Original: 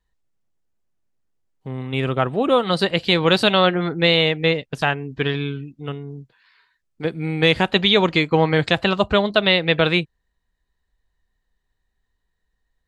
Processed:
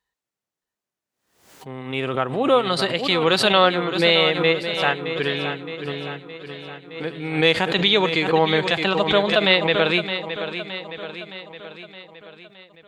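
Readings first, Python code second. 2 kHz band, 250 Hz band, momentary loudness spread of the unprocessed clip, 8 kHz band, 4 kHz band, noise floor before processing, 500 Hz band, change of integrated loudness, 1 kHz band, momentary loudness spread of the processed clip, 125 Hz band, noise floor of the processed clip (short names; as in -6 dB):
0.0 dB, -3.0 dB, 16 LU, n/a, 0.0 dB, -75 dBFS, 0.0 dB, -1.0 dB, +0.5 dB, 19 LU, -5.5 dB, under -85 dBFS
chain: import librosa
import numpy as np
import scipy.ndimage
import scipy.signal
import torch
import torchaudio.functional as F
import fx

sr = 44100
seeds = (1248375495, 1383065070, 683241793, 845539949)

p1 = fx.highpass(x, sr, hz=520.0, slope=6)
p2 = fx.hpss(p1, sr, part='harmonic', gain_db=6)
p3 = p2 + fx.echo_feedback(p2, sr, ms=617, feedback_pct=56, wet_db=-10.0, dry=0)
p4 = fx.pre_swell(p3, sr, db_per_s=91.0)
y = p4 * librosa.db_to_amplitude(-3.0)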